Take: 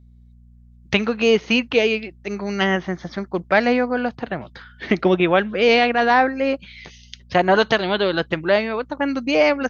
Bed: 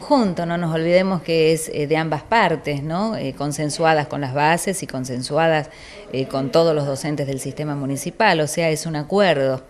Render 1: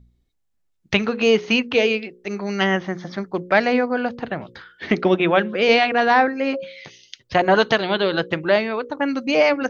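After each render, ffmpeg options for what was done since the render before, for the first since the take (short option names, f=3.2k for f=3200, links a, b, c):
-af "bandreject=f=60:t=h:w=4,bandreject=f=120:t=h:w=4,bandreject=f=180:t=h:w=4,bandreject=f=240:t=h:w=4,bandreject=f=300:t=h:w=4,bandreject=f=360:t=h:w=4,bandreject=f=420:t=h:w=4,bandreject=f=480:t=h:w=4,bandreject=f=540:t=h:w=4"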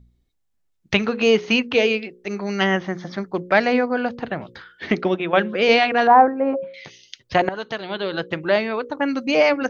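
-filter_complex "[0:a]asettb=1/sr,asplit=3[a][b][c];[a]atrim=end=6.074[d];[b]atrim=start=6.07:end=6.74,asetpts=PTS-STARTPTS,afade=t=in:d=0.004:c=qsin,afade=t=out:st=0.666:d=0.004:c=qsin,lowpass=f=930:t=q:w=1.9[e];[c]atrim=start=6.736[f];[d][e]acrossfade=d=0.004:c1=hsin:c2=qsin[g];[g][f]acrossfade=d=0.004:c1=qsin:c2=hsin,asplit=3[h][i][j];[h]atrim=end=5.33,asetpts=PTS-STARTPTS,afade=t=out:st=4.84:d=0.49:silence=0.354813[k];[i]atrim=start=5.33:end=7.49,asetpts=PTS-STARTPTS,afade=t=in:d=0.004:c=hsin:silence=0.354813,afade=t=out:st=2.156:d=0.004:c=hsin:silence=0.133352[l];[j]atrim=start=7.49,asetpts=PTS-STARTPTS,afade=t=in:d=1.24:silence=0.133352[m];[k][l][m]concat=n=3:v=0:a=1"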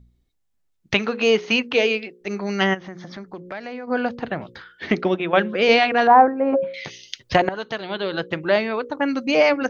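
-filter_complex "[0:a]asettb=1/sr,asplit=3[a][b][c];[a]atrim=end=0.944[d];[b]atrim=start=0.94:end=2.21,asetpts=PTS-STARTPTS,afade=t=in:d=0.004:c=qsin,afade=t=out:st=1.266:d=0.004:c=qsin,highpass=f=250:p=1[e];[c]atrim=start=2.206[f];[d][e]acrossfade=d=0.004:c1=hsin:c2=qsin[g];[g][f]acrossfade=d=0.004:c1=qsin:c2=hsin,asplit=3[h][i][j];[h]afade=t=out:st=2.73:d=0.02[k];[i]acompressor=threshold=-34dB:ratio=3:attack=3.2:release=140:knee=1:detection=peak,afade=t=in:st=2.73:d=0.02,afade=t=out:st=3.87:d=0.02[l];[j]afade=t=in:st=3.87:d=0.02[m];[k][l][m]amix=inputs=3:normalize=0,asplit=3[n][o][p];[n]afade=t=out:st=6.52:d=0.02[q];[o]acontrast=54,afade=t=in:st=6.52:d=0.02,afade=t=out:st=7.35:d=0.02[r];[p]afade=t=in:st=7.35:d=0.02[s];[q][r][s]amix=inputs=3:normalize=0"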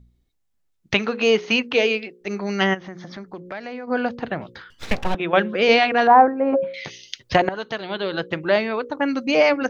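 -filter_complex "[0:a]asettb=1/sr,asplit=3[a][b][c];[a]atrim=end=4.704[d];[b]atrim=start=4.7:end=5.15,asetpts=PTS-STARTPTS,afade=t=in:d=0.004:c=qsin,afade=t=out:st=0.446:d=0.004:c=qsin,aeval=exprs='abs(val(0))':c=same[e];[c]atrim=start=5.146[f];[d][e]acrossfade=d=0.004:c1=hsin:c2=qsin[g];[g][f]acrossfade=d=0.004:c1=qsin:c2=hsin"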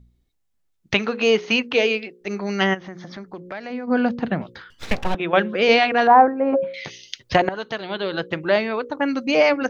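-filter_complex "[0:a]asettb=1/sr,asplit=3[a][b][c];[a]atrim=end=3.704[d];[b]atrim=start=3.7:end=4.42,asetpts=PTS-STARTPTS,afade=t=in:d=0.004:c=qsin,afade=t=out:st=0.716:d=0.004:c=qsin,equalizer=f=200:w=1.7:g=9.5[e];[c]atrim=start=4.416[f];[d][e]acrossfade=d=0.004:c1=hsin:c2=qsin[g];[g][f]acrossfade=d=0.004:c1=qsin:c2=hsin"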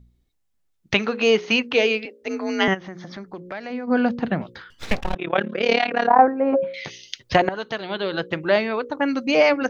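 -filter_complex "[0:a]asettb=1/sr,asplit=3[a][b][c];[a]atrim=end=2.054[d];[b]atrim=start=2.05:end=2.68,asetpts=PTS-STARTPTS,afade=t=in:d=0.004:c=qsin,afade=t=out:st=0.626:d=0.004:c=qsin,afreqshift=51[e];[c]atrim=start=2.676[f];[d][e]acrossfade=d=0.004:c1=hsin:c2=qsin[g];[g][f]acrossfade=d=0.004:c1=qsin:c2=hsin,asettb=1/sr,asplit=3[h][i][j];[h]atrim=end=5.004[k];[i]atrim=start=5:end=6.19,asetpts=PTS-STARTPTS,afade=t=in:d=0.004:c=qsin,afade=t=out:st=1.186:d=0.004:c=qsin,tremolo=f=36:d=0.889[l];[j]atrim=start=6.186[m];[k][l]acrossfade=d=0.004:c1=hsin:c2=qsin[n];[n][m]acrossfade=d=0.004:c1=qsin:c2=hsin"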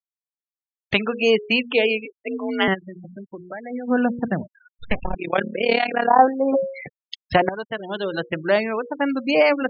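-af "afftfilt=real='re*gte(hypot(re,im),0.0562)':imag='im*gte(hypot(re,im),0.0562)':win_size=1024:overlap=0.75"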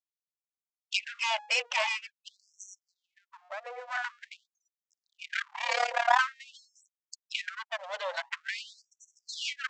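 -af "aresample=16000,aeval=exprs='max(val(0),0)':c=same,aresample=44100,afftfilt=real='re*gte(b*sr/1024,460*pow(5700/460,0.5+0.5*sin(2*PI*0.47*pts/sr)))':imag='im*gte(b*sr/1024,460*pow(5700/460,0.5+0.5*sin(2*PI*0.47*pts/sr)))':win_size=1024:overlap=0.75"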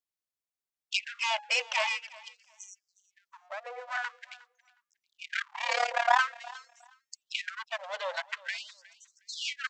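-af "aecho=1:1:362|724:0.0891|0.0169"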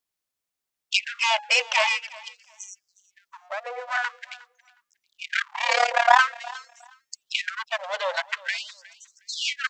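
-af "volume=7.5dB"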